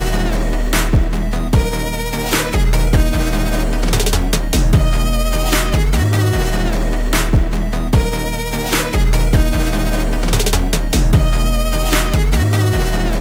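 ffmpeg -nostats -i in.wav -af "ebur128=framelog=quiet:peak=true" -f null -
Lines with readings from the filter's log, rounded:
Integrated loudness:
  I:         -16.7 LUFS
  Threshold: -26.7 LUFS
Loudness range:
  LRA:         1.1 LU
  Threshold: -36.7 LUFS
  LRA low:   -17.2 LUFS
  LRA high:  -16.2 LUFS
True peak:
  Peak:       -2.8 dBFS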